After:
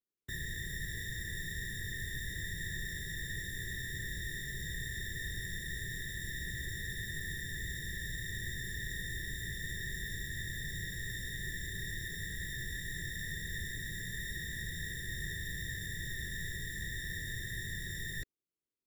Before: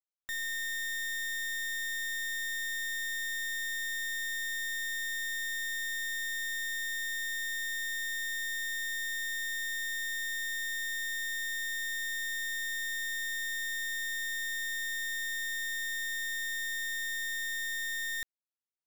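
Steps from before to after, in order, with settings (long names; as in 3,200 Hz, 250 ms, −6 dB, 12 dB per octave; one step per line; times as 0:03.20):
random phases in short frames
low shelf with overshoot 550 Hz +12 dB, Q 3
level −6.5 dB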